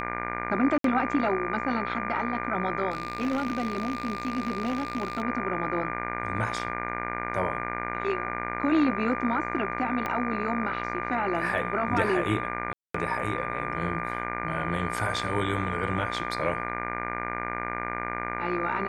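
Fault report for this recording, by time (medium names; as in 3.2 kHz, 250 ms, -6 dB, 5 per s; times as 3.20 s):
buzz 60 Hz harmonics 40 -34 dBFS
whine 1.2 kHz -35 dBFS
0.78–0.84 s: dropout 63 ms
2.90–5.22 s: clipped -23.5 dBFS
10.06 s: pop -16 dBFS
12.73–12.94 s: dropout 214 ms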